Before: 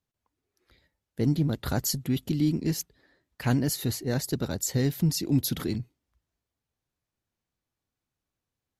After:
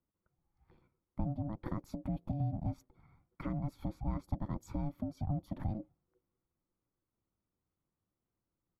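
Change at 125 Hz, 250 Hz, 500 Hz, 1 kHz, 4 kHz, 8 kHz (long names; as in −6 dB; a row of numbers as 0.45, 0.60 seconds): −10.0 dB, −12.0 dB, −14.0 dB, −5.5 dB, below −30 dB, below −30 dB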